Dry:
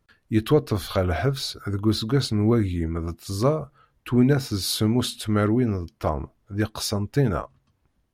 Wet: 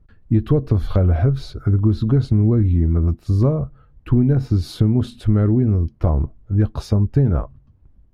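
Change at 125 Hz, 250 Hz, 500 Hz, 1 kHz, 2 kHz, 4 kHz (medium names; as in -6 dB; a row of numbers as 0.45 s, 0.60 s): +9.0 dB, +3.5 dB, -0.5 dB, -4.0 dB, no reading, -10.5 dB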